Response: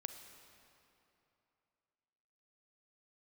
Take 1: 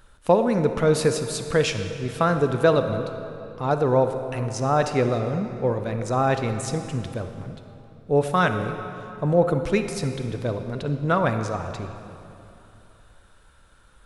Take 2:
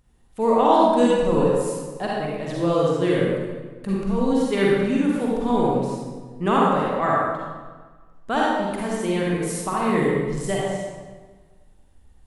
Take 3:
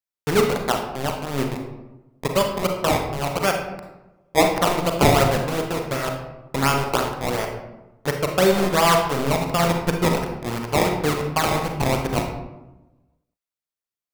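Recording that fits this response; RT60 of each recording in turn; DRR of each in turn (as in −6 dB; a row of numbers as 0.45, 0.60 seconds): 1; 3.0, 1.4, 1.0 seconds; 7.5, −5.0, 2.5 decibels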